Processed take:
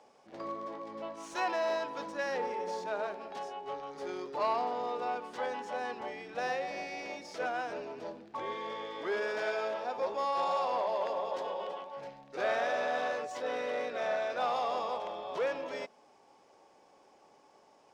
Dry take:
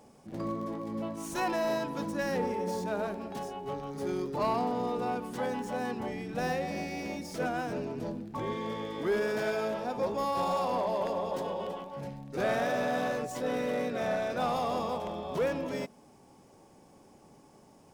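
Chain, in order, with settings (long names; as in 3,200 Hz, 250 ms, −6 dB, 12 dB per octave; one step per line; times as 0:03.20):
three-way crossover with the lows and the highs turned down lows −20 dB, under 410 Hz, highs −21 dB, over 6,400 Hz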